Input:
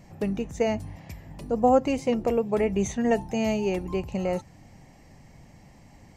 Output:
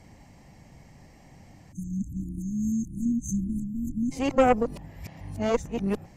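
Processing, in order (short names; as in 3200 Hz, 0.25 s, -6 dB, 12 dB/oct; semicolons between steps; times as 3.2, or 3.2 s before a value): whole clip reversed; added harmonics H 4 -13 dB, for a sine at -8.5 dBFS; spectral delete 1.72–4.12, 330–6100 Hz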